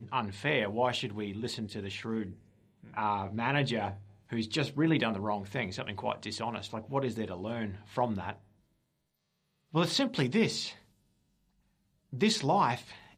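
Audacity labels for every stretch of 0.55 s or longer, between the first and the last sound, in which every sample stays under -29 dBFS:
2.220000	2.970000	silence
8.300000	9.750000	silence
10.660000	12.210000	silence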